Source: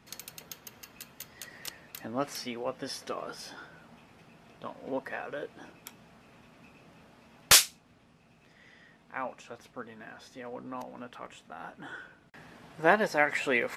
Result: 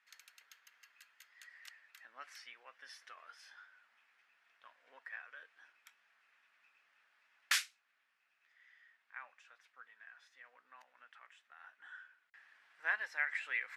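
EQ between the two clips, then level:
resonant band-pass 1,700 Hz, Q 2.5
first difference
spectral tilt −1.5 dB per octave
+7.5 dB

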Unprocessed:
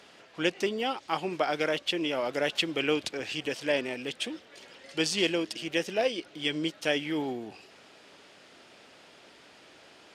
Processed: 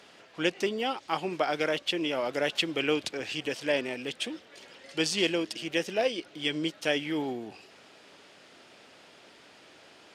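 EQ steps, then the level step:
high-pass filter 55 Hz
0.0 dB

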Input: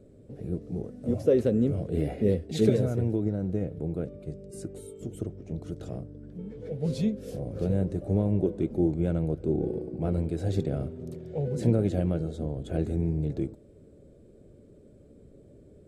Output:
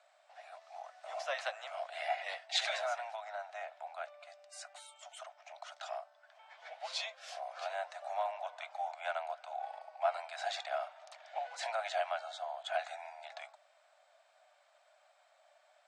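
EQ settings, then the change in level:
Butterworth high-pass 670 Hz 96 dB per octave
low-pass filter 8,600 Hz 12 dB per octave
high-frequency loss of the air 96 metres
+11.0 dB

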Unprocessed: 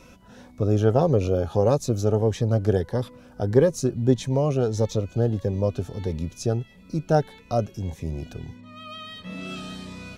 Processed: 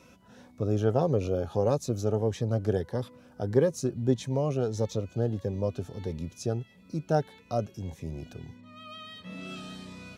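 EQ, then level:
high-pass filter 79 Hz
−5.5 dB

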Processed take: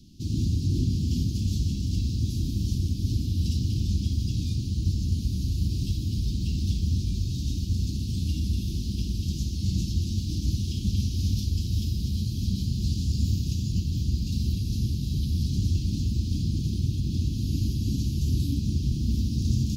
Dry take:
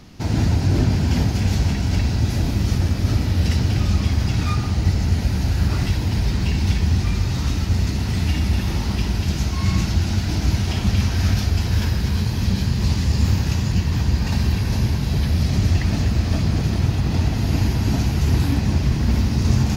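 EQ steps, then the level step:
inverse Chebyshev band-stop filter 550–2,000 Hz, stop band 40 dB
−7.0 dB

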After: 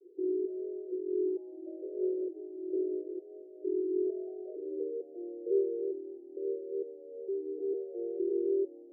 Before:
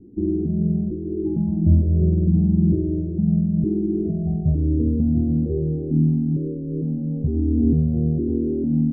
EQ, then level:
Butterworth high-pass 360 Hz 96 dB per octave
Butterworth low-pass 540 Hz 36 dB per octave
0.0 dB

